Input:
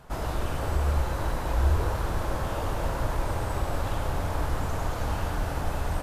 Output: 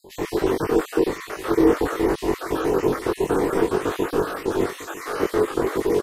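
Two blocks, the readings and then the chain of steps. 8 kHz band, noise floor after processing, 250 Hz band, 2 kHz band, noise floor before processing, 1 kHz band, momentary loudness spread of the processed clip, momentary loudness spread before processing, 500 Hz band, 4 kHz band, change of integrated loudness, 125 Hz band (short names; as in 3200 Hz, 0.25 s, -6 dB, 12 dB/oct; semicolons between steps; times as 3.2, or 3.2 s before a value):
+4.5 dB, -42 dBFS, +14.5 dB, +6.0 dB, -32 dBFS, +4.0 dB, 7 LU, 4 LU, +14.0 dB, +4.5 dB, +7.0 dB, -7.0 dB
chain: random spectral dropouts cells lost 56%; ring modulator 390 Hz; doubler 21 ms -2 dB; on a send: echo 0.95 s -15.5 dB; on the sum: gain +9 dB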